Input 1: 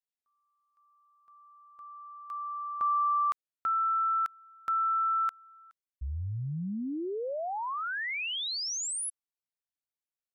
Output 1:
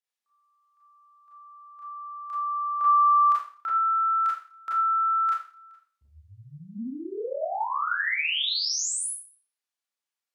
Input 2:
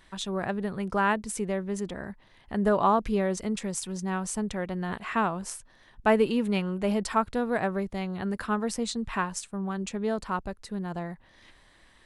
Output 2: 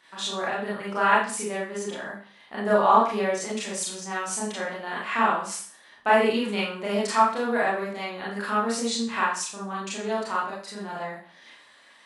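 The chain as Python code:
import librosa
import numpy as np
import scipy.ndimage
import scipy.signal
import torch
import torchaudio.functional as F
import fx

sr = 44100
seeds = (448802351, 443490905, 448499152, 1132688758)

y = fx.weighting(x, sr, curve='A')
y = fx.rev_schroeder(y, sr, rt60_s=0.43, comb_ms=27, drr_db=-7.0)
y = fx.dynamic_eq(y, sr, hz=240.0, q=7.7, threshold_db=-44.0, ratio=4.0, max_db=3)
y = y * librosa.db_to_amplitude(-2.0)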